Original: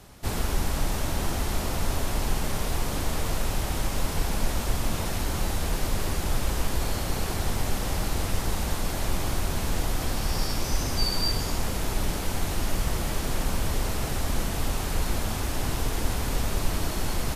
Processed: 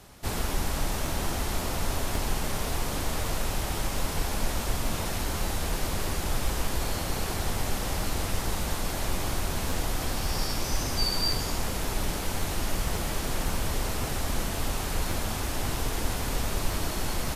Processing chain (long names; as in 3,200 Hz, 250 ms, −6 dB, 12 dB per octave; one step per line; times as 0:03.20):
low-shelf EQ 330 Hz −3 dB
regular buffer underruns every 0.54 s, samples 512, repeat, from 0:00.51